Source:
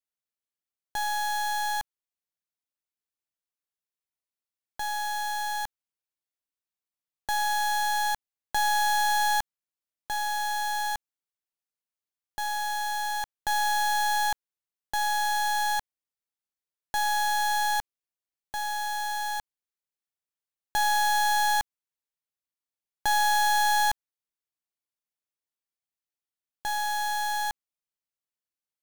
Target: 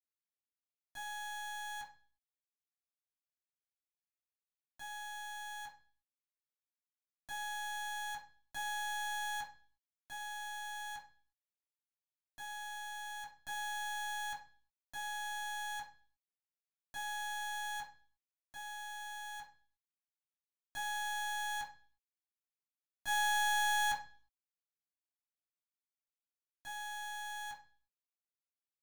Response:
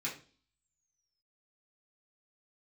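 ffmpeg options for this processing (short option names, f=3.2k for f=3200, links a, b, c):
-filter_complex "[0:a]agate=range=-27dB:threshold=-22dB:ratio=16:detection=peak,equalizer=f=380:w=4.7:g=-12[a];[1:a]atrim=start_sample=2205,afade=t=out:st=0.42:d=0.01,atrim=end_sample=18963[b];[a][b]afir=irnorm=-1:irlink=0,volume=11.5dB"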